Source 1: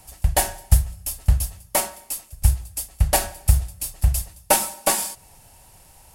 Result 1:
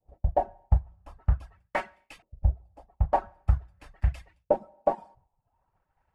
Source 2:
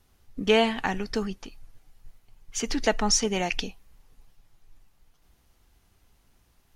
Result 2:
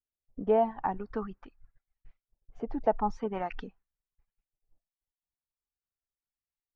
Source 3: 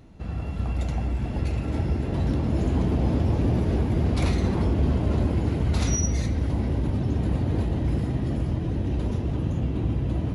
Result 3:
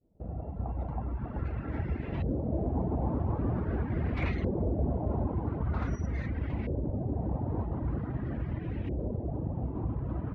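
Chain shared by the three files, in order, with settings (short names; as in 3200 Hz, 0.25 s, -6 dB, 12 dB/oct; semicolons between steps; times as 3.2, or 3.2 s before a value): expander -39 dBFS; reverb removal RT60 0.6 s; LFO low-pass saw up 0.45 Hz 510–2500 Hz; gain -6.5 dB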